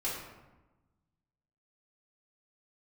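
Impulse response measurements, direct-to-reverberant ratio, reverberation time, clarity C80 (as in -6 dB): -8.5 dB, 1.1 s, 4.5 dB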